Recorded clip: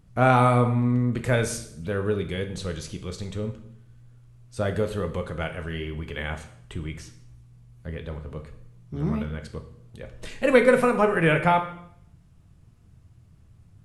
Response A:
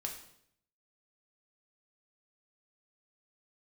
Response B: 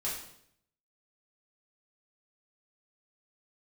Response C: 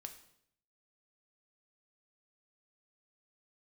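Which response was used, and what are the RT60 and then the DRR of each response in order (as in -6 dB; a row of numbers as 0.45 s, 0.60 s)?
C; 0.70 s, 0.70 s, 0.70 s; 1.0 dB, -8.0 dB, 5.5 dB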